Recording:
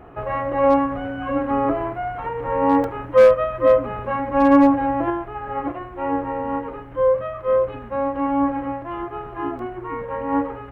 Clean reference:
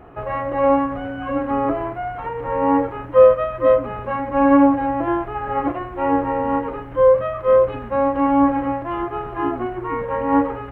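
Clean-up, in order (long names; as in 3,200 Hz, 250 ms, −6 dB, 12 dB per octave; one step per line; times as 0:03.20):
clipped peaks rebuilt −6.5 dBFS
repair the gap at 0:02.84/0:09.59, 1.8 ms
level correction +4.5 dB, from 0:05.10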